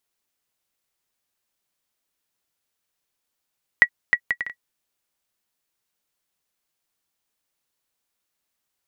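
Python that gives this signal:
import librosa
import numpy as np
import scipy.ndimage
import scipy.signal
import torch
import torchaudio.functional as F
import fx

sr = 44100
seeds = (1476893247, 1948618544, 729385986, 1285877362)

y = fx.bouncing_ball(sr, first_gap_s=0.31, ratio=0.57, hz=1930.0, decay_ms=69.0, level_db=-1.5)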